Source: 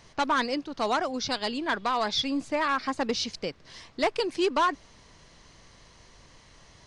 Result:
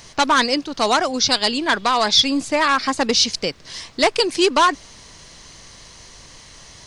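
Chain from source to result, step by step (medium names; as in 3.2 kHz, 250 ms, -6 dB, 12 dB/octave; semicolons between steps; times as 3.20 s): treble shelf 3.9 kHz +11.5 dB; trim +8 dB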